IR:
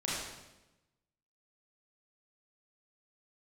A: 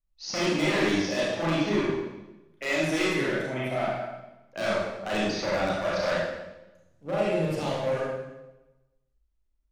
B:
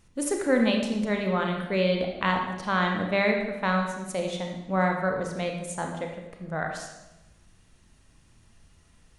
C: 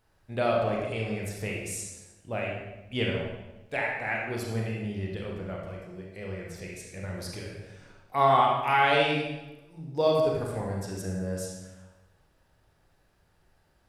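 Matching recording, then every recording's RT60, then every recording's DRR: A; 1.0 s, 1.0 s, 1.0 s; -7.5 dB, 2.0 dB, -2.0 dB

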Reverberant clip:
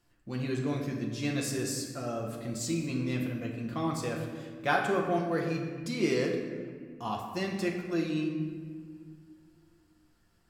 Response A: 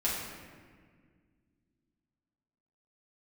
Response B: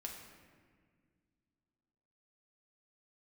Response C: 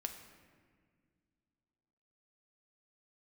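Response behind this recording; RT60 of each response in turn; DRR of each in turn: B; 1.8 s, 1.8 s, 1.9 s; -8.5 dB, -0.5 dB, 4.5 dB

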